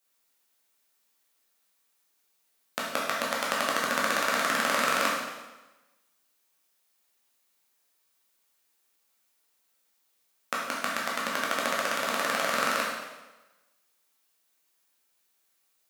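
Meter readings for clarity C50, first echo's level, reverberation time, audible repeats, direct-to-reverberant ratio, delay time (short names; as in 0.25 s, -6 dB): 0.5 dB, none, 1.1 s, none, -5.0 dB, none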